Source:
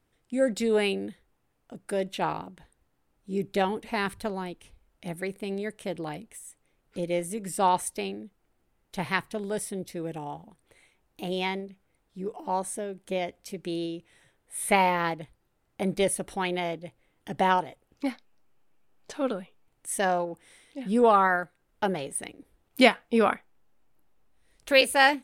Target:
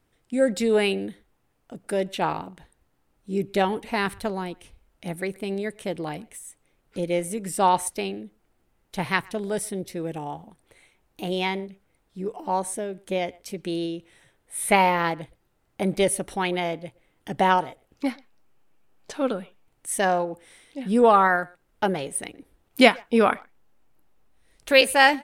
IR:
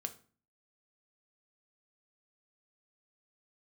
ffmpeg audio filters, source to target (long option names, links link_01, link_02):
-filter_complex "[0:a]asplit=2[link_01][link_02];[link_02]adelay=120,highpass=300,lowpass=3400,asoftclip=type=hard:threshold=-13.5dB,volume=-25dB[link_03];[link_01][link_03]amix=inputs=2:normalize=0,volume=3.5dB"